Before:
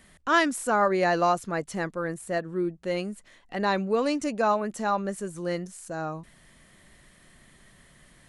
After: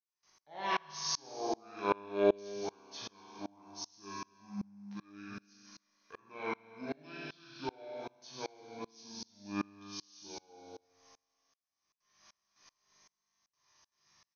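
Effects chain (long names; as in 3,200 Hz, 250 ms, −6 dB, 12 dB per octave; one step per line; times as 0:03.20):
noise gate with hold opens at −44 dBFS
spectral tilt +4 dB per octave
mains-hum notches 60/120/180 Hz
resonators tuned to a chord F2 sus4, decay 0.77 s
single-tap delay 140 ms −12 dB
wrong playback speed 78 rpm record played at 45 rpm
tremolo with a ramp in dB swelling 2.6 Hz, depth 30 dB
level +10 dB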